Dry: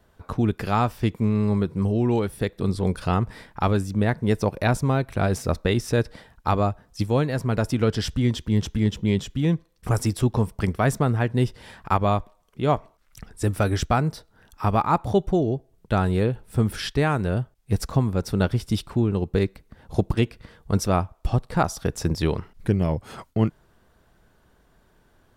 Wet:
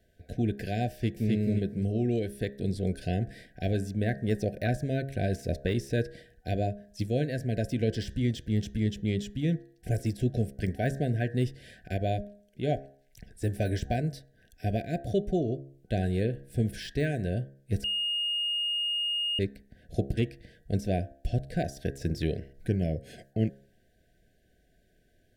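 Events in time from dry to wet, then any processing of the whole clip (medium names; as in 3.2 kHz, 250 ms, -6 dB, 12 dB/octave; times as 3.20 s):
0.90–1.32 s: echo throw 260 ms, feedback 20%, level -1.5 dB
17.84–19.39 s: bleep 2.85 kHz -9.5 dBFS
whole clip: de-hum 68.25 Hz, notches 28; FFT band-reject 750–1500 Hz; de-esser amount 80%; trim -6 dB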